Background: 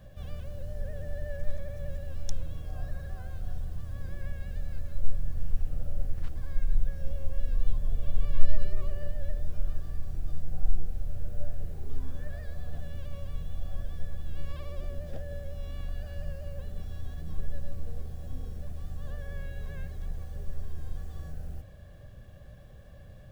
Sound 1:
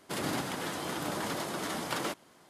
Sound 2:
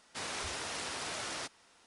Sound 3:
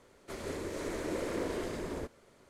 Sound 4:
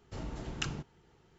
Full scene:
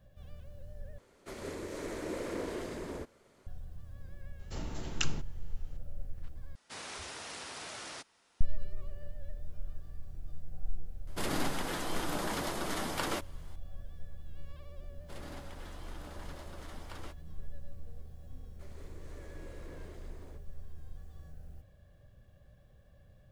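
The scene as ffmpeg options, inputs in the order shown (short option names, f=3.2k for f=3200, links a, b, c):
-filter_complex "[3:a]asplit=2[a][b];[1:a]asplit=2[c][d];[0:a]volume=-10.5dB[e];[4:a]highshelf=f=3.3k:g=8[f];[d]highshelf=f=7.6k:g=-5.5[g];[e]asplit=3[h][i][j];[h]atrim=end=0.984[k];[a]atrim=end=2.49,asetpts=PTS-STARTPTS,volume=-2.5dB[l];[i]atrim=start=3.466:end=6.554[m];[2:a]atrim=end=1.86,asetpts=PTS-STARTPTS,volume=-5dB[n];[j]atrim=start=8.406[o];[f]atrim=end=1.38,asetpts=PTS-STARTPTS,volume=-1dB,afade=t=in:d=0.004:c=hsin,afade=t=out:st=1.376:d=0.004:c=hsin,adelay=4390[p];[c]atrim=end=2.49,asetpts=PTS-STARTPTS,volume=-1dB,afade=t=in:d=0.004:c=hsin,afade=t=out:st=2.486:d=0.004:c=hsin,adelay=11070[q];[g]atrim=end=2.49,asetpts=PTS-STARTPTS,volume=-15dB,afade=t=in:d=0.004:c=hsin,afade=t=out:st=2.486:d=0.004:c=hsin,adelay=14990[r];[b]atrim=end=2.49,asetpts=PTS-STARTPTS,volume=-16.5dB,afade=t=in:d=0.004:c=hsin,afade=t=out:st=2.486:d=0.004:c=hsin,adelay=18310[s];[k][l]acrossfade=d=0.004:c1=hsin:c2=hsin[t];[t][m]acrossfade=d=0.004:c1=hsin:c2=hsin[u];[u][n]acrossfade=d=0.004:c1=hsin:c2=hsin[v];[v][o]acrossfade=d=0.004:c1=hsin:c2=hsin[w];[w][p][q][r][s]amix=inputs=5:normalize=0"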